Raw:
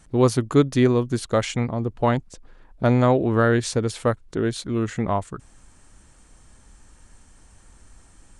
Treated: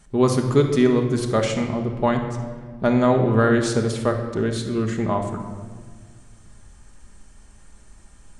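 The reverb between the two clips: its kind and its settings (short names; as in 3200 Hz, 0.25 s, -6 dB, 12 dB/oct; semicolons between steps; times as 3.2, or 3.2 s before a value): shoebox room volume 1900 m³, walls mixed, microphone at 1.3 m; gain -1 dB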